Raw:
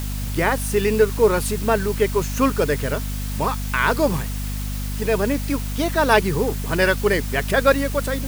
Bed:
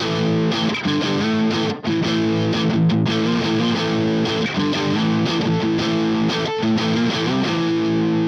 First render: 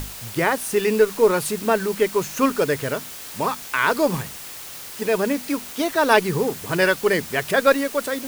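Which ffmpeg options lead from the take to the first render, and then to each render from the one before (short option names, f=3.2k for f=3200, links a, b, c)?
-af "bandreject=f=50:t=h:w=6,bandreject=f=100:t=h:w=6,bandreject=f=150:t=h:w=6,bandreject=f=200:t=h:w=6,bandreject=f=250:t=h:w=6"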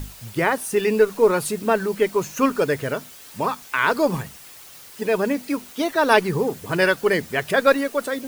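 -af "afftdn=nr=8:nf=-37"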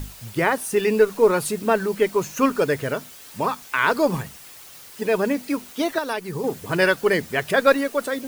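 -filter_complex "[0:a]asettb=1/sr,asplit=3[a][b][c];[a]atrim=end=5.984[d];[b]atrim=start=5.98:end=6.44,asetpts=PTS-STARTPTS,afade=t=in:d=0.004:c=qsin,afade=t=out:st=0.456:d=0.004:c=qsin,acrossover=split=3300|7100[e][f][g];[e]acompressor=threshold=-26dB:ratio=4[h];[f]acompressor=threshold=-42dB:ratio=4[i];[g]acompressor=threshold=-43dB:ratio=4[j];[h][i][j]amix=inputs=3:normalize=0[k];[c]atrim=start=6.436[l];[d][k]acrossfade=d=0.004:c1=hsin:c2=qsin[m];[m][l]acrossfade=d=0.004:c1=qsin:c2=hsin"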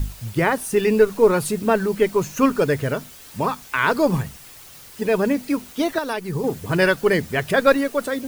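-af "lowshelf=f=160:g=11"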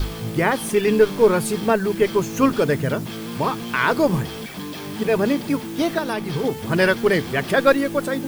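-filter_complex "[1:a]volume=-12.5dB[a];[0:a][a]amix=inputs=2:normalize=0"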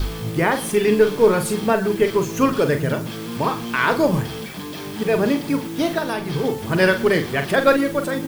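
-filter_complex "[0:a]asplit=2[a][b];[b]adelay=43,volume=-8.5dB[c];[a][c]amix=inputs=2:normalize=0,asplit=2[d][e];[e]adelay=116.6,volume=-19dB,highshelf=f=4k:g=-2.62[f];[d][f]amix=inputs=2:normalize=0"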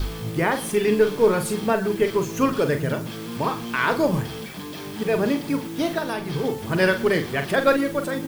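-af "volume=-3dB"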